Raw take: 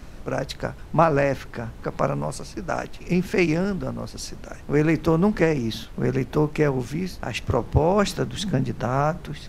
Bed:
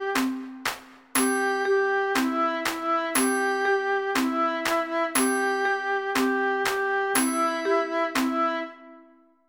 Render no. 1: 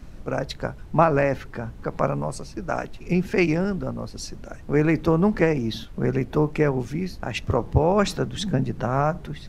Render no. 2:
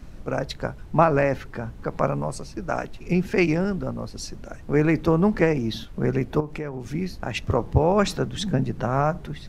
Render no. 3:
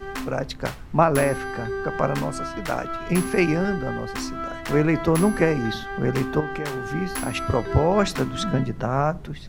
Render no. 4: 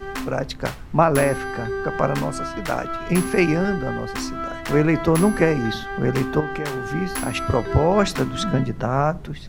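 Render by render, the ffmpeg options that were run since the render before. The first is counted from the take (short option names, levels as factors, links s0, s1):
-af "afftdn=nr=6:nf=-40"
-filter_complex "[0:a]asettb=1/sr,asplit=3[s0][s1][s2];[s0]atrim=end=6.404[s3];[s1]atrim=start=6.4:end=6.86,asetpts=PTS-STARTPTS,afade=t=in:d=0.004:c=qsin,afade=t=out:st=0.456:d=0.004:c=qsin,acompressor=threshold=0.0316:ratio=3:attack=3.2:release=140:knee=1:detection=peak[s4];[s2]atrim=start=6.856[s5];[s3][s4]acrossfade=d=0.004:c1=hsin:c2=qsin[s6];[s6][s5]acrossfade=d=0.004:c1=qsin:c2=hsin"
-filter_complex "[1:a]volume=0.447[s0];[0:a][s0]amix=inputs=2:normalize=0"
-af "volume=1.26,alimiter=limit=0.708:level=0:latency=1"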